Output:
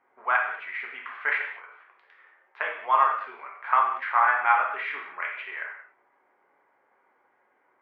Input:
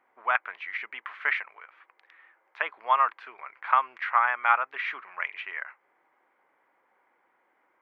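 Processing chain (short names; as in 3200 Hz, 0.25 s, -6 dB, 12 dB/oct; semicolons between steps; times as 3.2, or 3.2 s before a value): non-linear reverb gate 0.25 s falling, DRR -1.5 dB; short-mantissa float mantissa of 6-bit; LPF 1900 Hz 6 dB/oct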